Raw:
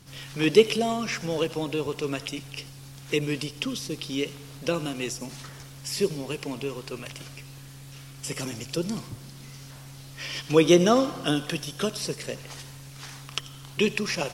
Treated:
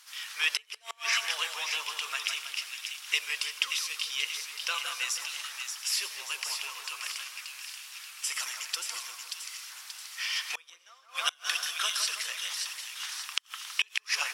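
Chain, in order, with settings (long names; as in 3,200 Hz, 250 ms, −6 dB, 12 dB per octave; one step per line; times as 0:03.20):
on a send: echo with a time of its own for lows and highs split 2,100 Hz, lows 162 ms, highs 581 ms, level −5.5 dB
on the sum: gate with flip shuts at −11 dBFS, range −30 dB
high-pass filter 1,100 Hz 24 dB per octave
level +3 dB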